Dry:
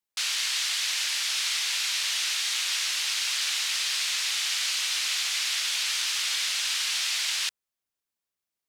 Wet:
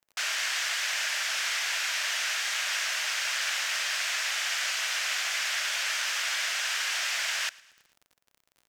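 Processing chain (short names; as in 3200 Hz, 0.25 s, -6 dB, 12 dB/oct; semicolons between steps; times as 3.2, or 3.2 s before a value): fifteen-band EQ 630 Hz +11 dB, 1600 Hz +7 dB, 4000 Hz -7 dB, 10000 Hz -7 dB; crackle 50/s -44 dBFS; feedback echo 0.11 s, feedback 54%, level -23.5 dB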